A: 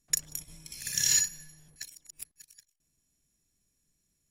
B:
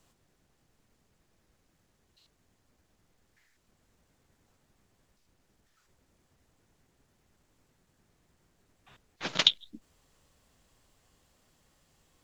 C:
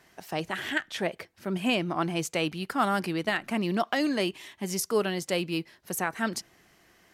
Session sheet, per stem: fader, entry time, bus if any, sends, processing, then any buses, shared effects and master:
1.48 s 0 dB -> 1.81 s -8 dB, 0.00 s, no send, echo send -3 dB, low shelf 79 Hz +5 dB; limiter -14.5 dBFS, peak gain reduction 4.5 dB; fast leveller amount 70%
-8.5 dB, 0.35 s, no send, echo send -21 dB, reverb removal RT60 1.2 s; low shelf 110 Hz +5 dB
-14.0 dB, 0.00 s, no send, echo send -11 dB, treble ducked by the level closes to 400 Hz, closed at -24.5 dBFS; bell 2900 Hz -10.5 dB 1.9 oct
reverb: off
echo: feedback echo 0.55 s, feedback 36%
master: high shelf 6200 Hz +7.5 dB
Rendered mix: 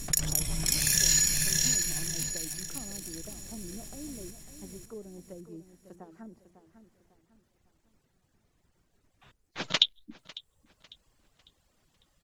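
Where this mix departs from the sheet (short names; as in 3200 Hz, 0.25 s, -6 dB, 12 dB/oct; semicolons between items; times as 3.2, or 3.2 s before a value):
stem B -8.5 dB -> -0.5 dB; master: missing high shelf 6200 Hz +7.5 dB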